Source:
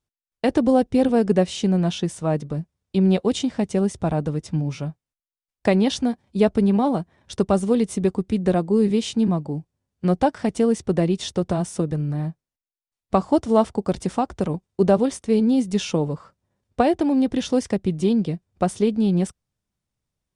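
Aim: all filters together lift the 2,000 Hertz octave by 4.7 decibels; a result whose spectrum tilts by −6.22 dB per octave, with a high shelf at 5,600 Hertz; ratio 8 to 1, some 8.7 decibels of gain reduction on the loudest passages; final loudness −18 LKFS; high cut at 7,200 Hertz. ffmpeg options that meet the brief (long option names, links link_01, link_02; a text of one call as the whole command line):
ffmpeg -i in.wav -af "lowpass=7200,equalizer=frequency=2000:width_type=o:gain=6.5,highshelf=frequency=5600:gain=-4.5,acompressor=threshold=-21dB:ratio=8,volume=9.5dB" out.wav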